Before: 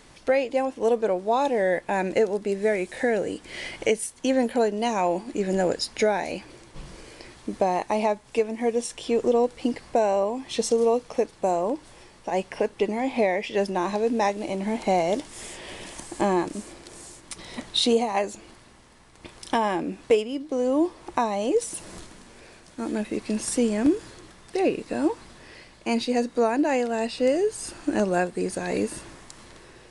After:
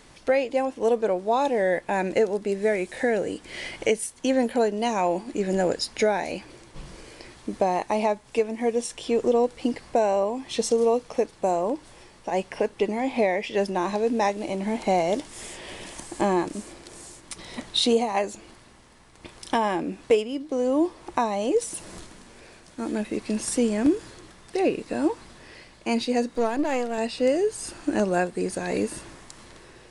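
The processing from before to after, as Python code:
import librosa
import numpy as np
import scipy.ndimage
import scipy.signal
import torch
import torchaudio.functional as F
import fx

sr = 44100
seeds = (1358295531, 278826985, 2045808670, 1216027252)

y = fx.halfwave_gain(x, sr, db=-7.0, at=(26.35, 26.98))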